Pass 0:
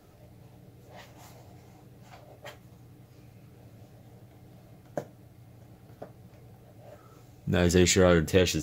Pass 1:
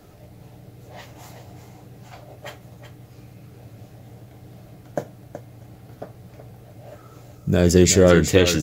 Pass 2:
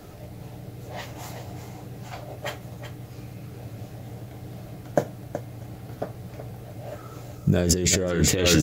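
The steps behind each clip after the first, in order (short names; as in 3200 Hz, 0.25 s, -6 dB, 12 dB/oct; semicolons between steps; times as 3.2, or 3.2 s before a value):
spectral gain 7.38–8.1, 710–4500 Hz -6 dB; echo 0.374 s -10.5 dB; gain +7.5 dB
negative-ratio compressor -21 dBFS, ratio -1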